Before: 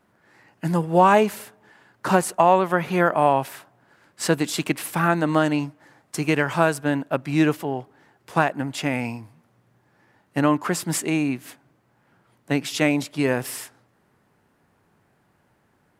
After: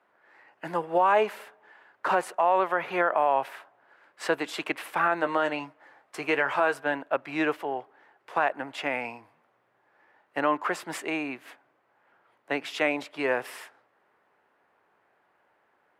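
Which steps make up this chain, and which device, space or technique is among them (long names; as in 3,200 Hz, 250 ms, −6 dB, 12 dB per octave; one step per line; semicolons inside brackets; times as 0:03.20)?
DJ mixer with the lows and highs turned down (three-way crossover with the lows and the highs turned down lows −23 dB, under 400 Hz, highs −16 dB, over 3,200 Hz; brickwall limiter −12.5 dBFS, peak gain reduction 8 dB)
0:05.20–0:06.94: double-tracking delay 15 ms −9.5 dB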